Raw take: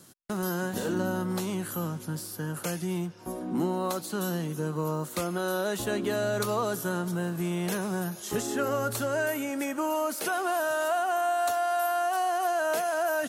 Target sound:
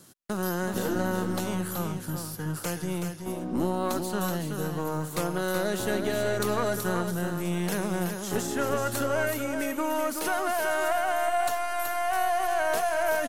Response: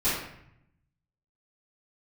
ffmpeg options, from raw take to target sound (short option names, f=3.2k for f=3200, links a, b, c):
-af "aeval=exprs='0.178*(cos(1*acos(clip(val(0)/0.178,-1,1)))-cos(1*PI/2))+0.0251*(cos(4*acos(clip(val(0)/0.178,-1,1)))-cos(4*PI/2))':c=same,aecho=1:1:376:0.473"